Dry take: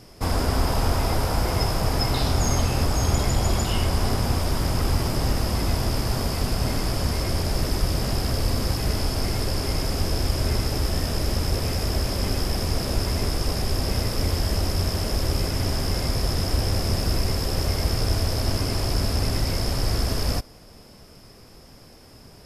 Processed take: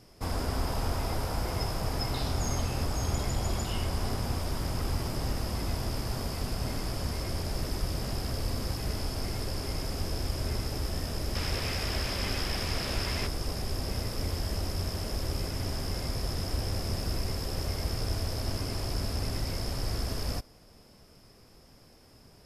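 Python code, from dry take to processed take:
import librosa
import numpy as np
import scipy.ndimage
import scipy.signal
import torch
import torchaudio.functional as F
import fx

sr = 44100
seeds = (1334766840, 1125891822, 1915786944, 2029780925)

y = fx.peak_eq(x, sr, hz=2400.0, db=10.0, octaves=2.3, at=(11.35, 13.27))
y = y * 10.0 ** (-8.5 / 20.0)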